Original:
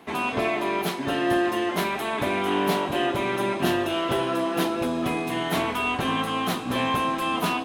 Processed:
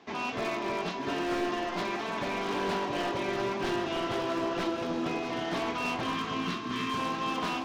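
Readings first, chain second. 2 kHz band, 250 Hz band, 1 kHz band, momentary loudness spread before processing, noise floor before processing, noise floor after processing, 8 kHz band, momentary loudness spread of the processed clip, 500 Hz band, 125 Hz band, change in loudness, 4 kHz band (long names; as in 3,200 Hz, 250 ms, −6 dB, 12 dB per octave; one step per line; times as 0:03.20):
−6.5 dB, −7.0 dB, −6.5 dB, 3 LU, −30 dBFS, −36 dBFS, −7.5 dB, 2 LU, −6.5 dB, −8.0 dB, −6.5 dB, −6.0 dB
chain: variable-slope delta modulation 32 kbit/s
time-frequency box erased 0:06.15–0:06.98, 460–1,000 Hz
low-shelf EQ 65 Hz −6.5 dB
wave folding −19.5 dBFS
flanger 1.9 Hz, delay 1.6 ms, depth 7.1 ms, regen +77%
on a send: delay that swaps between a low-pass and a high-pass 321 ms, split 1,400 Hz, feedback 67%, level −6 dB
on the sum: level −2 dB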